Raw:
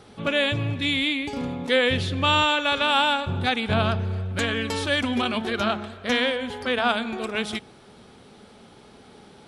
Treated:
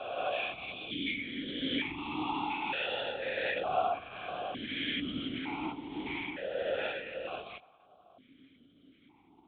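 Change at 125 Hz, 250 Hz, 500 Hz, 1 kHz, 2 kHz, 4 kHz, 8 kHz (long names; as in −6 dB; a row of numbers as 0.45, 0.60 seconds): −21.5 dB, −11.0 dB, −10.0 dB, −10.0 dB, −12.0 dB, −13.0 dB, below −40 dB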